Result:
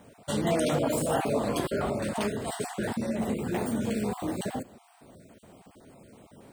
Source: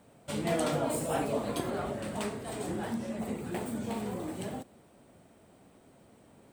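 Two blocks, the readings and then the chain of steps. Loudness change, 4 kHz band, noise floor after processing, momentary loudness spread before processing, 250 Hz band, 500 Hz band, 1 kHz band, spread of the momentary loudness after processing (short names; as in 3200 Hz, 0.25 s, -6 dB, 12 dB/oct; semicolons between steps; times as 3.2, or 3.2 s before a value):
+4.5 dB, +4.5 dB, -59 dBFS, 8 LU, +5.0 dB, +4.5 dB, +3.5 dB, 7 LU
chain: random spectral dropouts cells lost 25%; in parallel at +1.5 dB: limiter -27.5 dBFS, peak gain reduction 10 dB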